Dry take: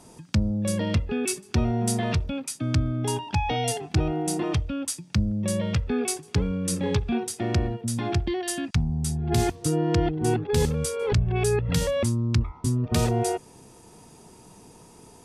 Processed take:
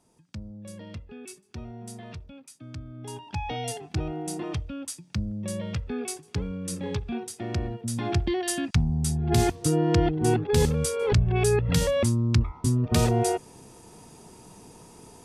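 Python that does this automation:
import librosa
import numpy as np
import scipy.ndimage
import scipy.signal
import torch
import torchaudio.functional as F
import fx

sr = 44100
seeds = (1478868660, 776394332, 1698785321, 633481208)

y = fx.gain(x, sr, db=fx.line((2.85, -16.0), (3.43, -6.0), (7.47, -6.0), (8.31, 1.0)))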